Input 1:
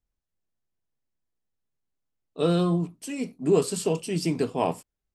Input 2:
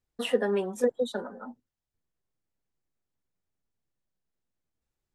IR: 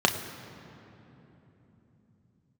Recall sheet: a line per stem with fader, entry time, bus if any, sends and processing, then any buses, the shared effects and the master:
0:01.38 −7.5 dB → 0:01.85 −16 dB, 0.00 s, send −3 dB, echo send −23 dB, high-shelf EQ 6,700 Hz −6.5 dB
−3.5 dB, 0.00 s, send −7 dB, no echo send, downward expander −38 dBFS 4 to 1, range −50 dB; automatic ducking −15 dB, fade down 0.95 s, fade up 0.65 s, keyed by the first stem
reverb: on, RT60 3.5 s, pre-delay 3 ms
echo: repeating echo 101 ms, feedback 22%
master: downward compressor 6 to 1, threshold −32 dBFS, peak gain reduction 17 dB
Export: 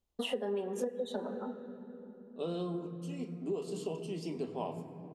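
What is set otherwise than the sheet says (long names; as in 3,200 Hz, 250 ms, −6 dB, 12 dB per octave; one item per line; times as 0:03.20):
stem 2: missing downward expander −38 dBFS 4 to 1, range −50 dB
reverb return −10.0 dB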